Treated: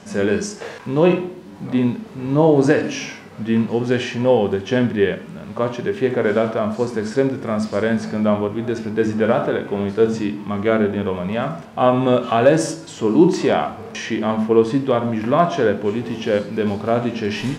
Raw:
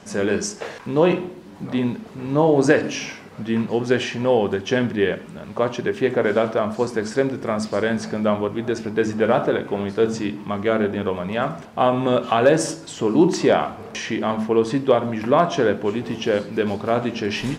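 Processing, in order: harmonic-percussive split harmonic +9 dB; trim -4.5 dB

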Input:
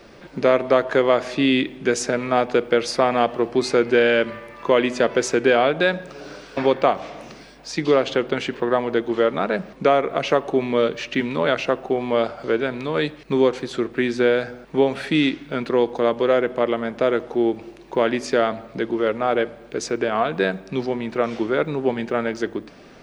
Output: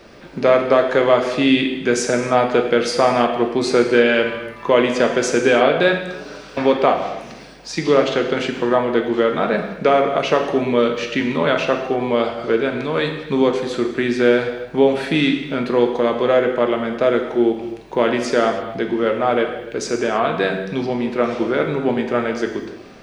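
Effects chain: gated-style reverb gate 340 ms falling, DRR 3 dB; trim +1.5 dB

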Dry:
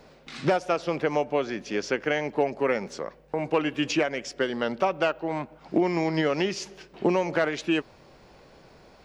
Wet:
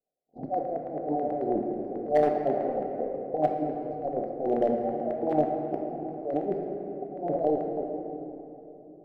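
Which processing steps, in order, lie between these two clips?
median filter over 41 samples; compressor with a negative ratio -32 dBFS, ratio -0.5; gate -41 dBFS, range -46 dB; Chebyshev band-stop 780–4300 Hz, order 5; tone controls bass -12 dB, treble -13 dB; low-pass that closes with the level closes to 590 Hz, closed at -26.5 dBFS; square tremolo 0.96 Hz, depth 60%, duty 60%; LFO low-pass square 9.2 Hz 770–1800 Hz; small resonant body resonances 730/2000 Hz, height 6 dB, ringing for 35 ms; hard clipper -21.5 dBFS, distortion -23 dB; simulated room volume 200 m³, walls hard, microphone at 0.37 m; trim +5 dB

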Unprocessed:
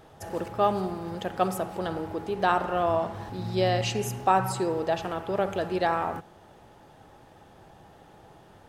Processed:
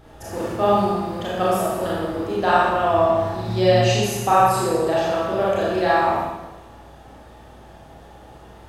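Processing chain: hum 60 Hz, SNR 23 dB; Schroeder reverb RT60 1.1 s, combs from 27 ms, DRR -7 dB

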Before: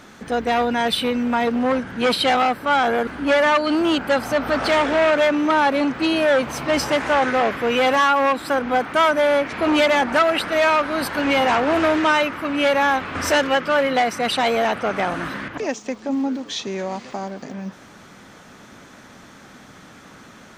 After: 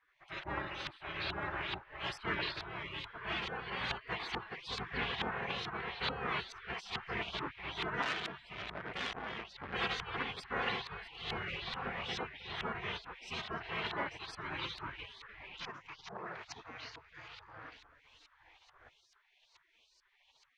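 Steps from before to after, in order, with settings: rotary cabinet horn 1.2 Hz; repeats whose band climbs or falls 297 ms, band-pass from 3.5 kHz, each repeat -1.4 oct, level -1.5 dB; LFO low-pass saw up 2.3 Hz 550–3500 Hz; spectral gate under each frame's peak -25 dB weak; 8.02–9.74 s: transformer saturation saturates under 2.5 kHz; trim -2.5 dB

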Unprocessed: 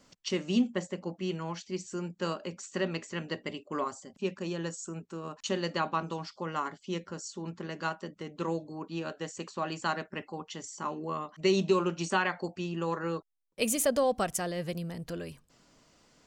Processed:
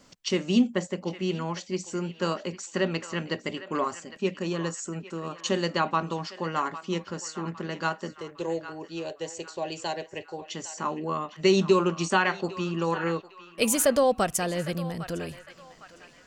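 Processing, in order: 8.12–10.45 s: static phaser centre 530 Hz, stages 4; band-passed feedback delay 806 ms, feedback 48%, band-pass 1.8 kHz, level -11.5 dB; trim +5 dB

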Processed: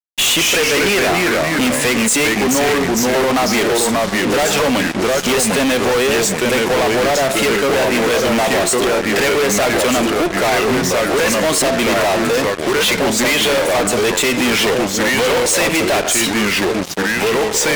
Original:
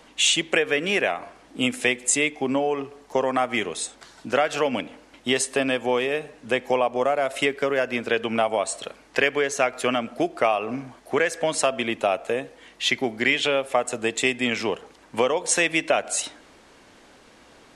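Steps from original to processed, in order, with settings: ever faster or slower copies 173 ms, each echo -2 st, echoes 3, each echo -6 dB; fuzz box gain 38 dB, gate -40 dBFS

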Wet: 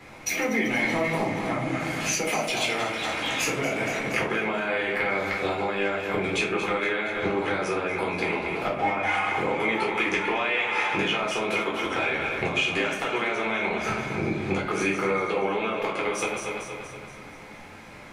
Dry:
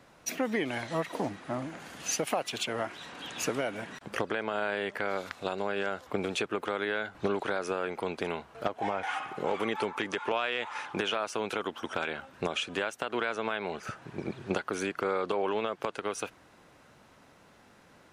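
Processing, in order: backward echo that repeats 118 ms, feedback 72%, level -9.5 dB; compression, threshold -35 dBFS, peak gain reduction 10.5 dB; peaking EQ 2.2 kHz +12 dB 0.31 oct; simulated room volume 360 m³, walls furnished, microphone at 4 m; trim +4.5 dB

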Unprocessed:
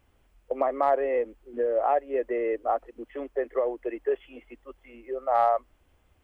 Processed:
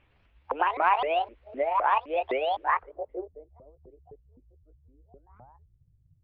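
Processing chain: sawtooth pitch modulation +11 st, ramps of 257 ms; low-pass sweep 2.6 kHz -> 130 Hz, 2.69–3.46 s

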